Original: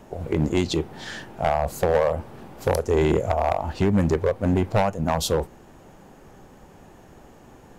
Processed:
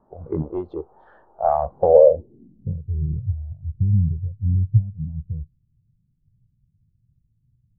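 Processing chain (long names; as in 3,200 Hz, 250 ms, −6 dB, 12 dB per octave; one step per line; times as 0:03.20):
0:00.42–0:01.49: octave-band graphic EQ 125/250/500/2,000/4,000/8,000 Hz −10/−8/+4/−7/+4/+3 dB
low-pass filter sweep 1,200 Hz → 120 Hz, 0:01.63–0:02.92
every bin expanded away from the loudest bin 1.5 to 1
level +2.5 dB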